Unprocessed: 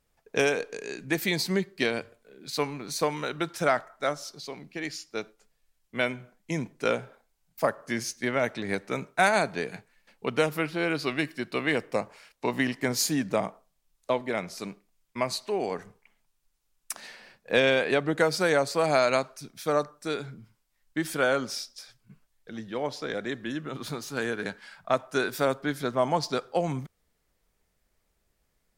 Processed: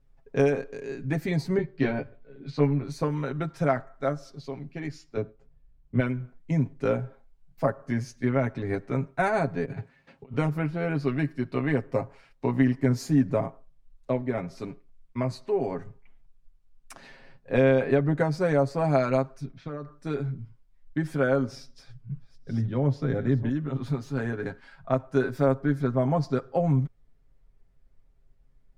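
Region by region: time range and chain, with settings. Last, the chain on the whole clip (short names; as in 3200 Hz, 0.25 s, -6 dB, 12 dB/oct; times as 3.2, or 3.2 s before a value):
1.57–2.83 LPF 4300 Hz + doubler 14 ms -3 dB
5.17–6 HPF 51 Hz + tilt -3 dB/oct
9.65–10.34 HPF 76 Hz 24 dB/oct + high shelf 8900 Hz -10.5 dB + negative-ratio compressor -46 dBFS
19.45–19.91 Bessel low-pass 3700 Hz, order 4 + compressor 3:1, threshold -34 dBFS
21.52–23.49 reverse delay 0.546 s, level -13 dB + bell 130 Hz +10 dB 1.8 oct
whole clip: RIAA curve playback; comb 7.4 ms, depth 71%; dynamic EQ 3300 Hz, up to -7 dB, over -47 dBFS, Q 1.5; gain -4 dB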